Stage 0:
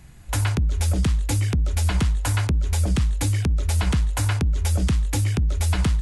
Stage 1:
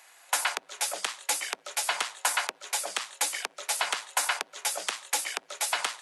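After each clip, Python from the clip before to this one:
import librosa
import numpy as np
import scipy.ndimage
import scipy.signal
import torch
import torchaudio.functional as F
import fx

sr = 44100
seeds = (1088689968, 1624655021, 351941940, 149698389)

y = scipy.signal.sosfilt(scipy.signal.butter(4, 640.0, 'highpass', fs=sr, output='sos'), x)
y = y * 10.0 ** (3.0 / 20.0)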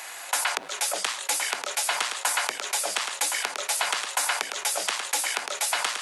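y = x + 10.0 ** (-12.0 / 20.0) * np.pad(x, (int(1068 * sr / 1000.0), 0))[:len(x)]
y = fx.env_flatten(y, sr, amount_pct=50)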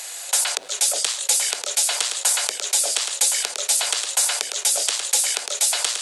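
y = fx.graphic_eq(x, sr, hz=(125, 250, 500, 1000, 2000, 4000, 8000), db=(-7, -7, 5, -7, -4, 5, 9))
y = y * 10.0 ** (1.0 / 20.0)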